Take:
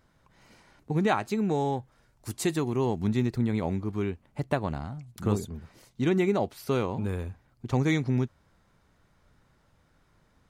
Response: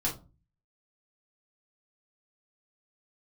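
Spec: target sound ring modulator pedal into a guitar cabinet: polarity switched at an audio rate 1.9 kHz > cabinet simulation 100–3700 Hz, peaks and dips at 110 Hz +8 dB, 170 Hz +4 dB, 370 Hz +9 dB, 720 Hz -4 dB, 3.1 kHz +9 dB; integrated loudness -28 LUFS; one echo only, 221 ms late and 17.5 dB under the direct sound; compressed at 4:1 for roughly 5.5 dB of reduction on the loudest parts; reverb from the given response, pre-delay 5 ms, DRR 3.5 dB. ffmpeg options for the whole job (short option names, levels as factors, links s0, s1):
-filter_complex "[0:a]acompressor=threshold=0.0447:ratio=4,aecho=1:1:221:0.133,asplit=2[s0][s1];[1:a]atrim=start_sample=2205,adelay=5[s2];[s1][s2]afir=irnorm=-1:irlink=0,volume=0.335[s3];[s0][s3]amix=inputs=2:normalize=0,aeval=exprs='val(0)*sgn(sin(2*PI*1900*n/s))':c=same,highpass=100,equalizer=f=110:t=q:w=4:g=8,equalizer=f=170:t=q:w=4:g=4,equalizer=f=370:t=q:w=4:g=9,equalizer=f=720:t=q:w=4:g=-4,equalizer=f=3100:t=q:w=4:g=9,lowpass=f=3700:w=0.5412,lowpass=f=3700:w=1.3066,volume=0.944"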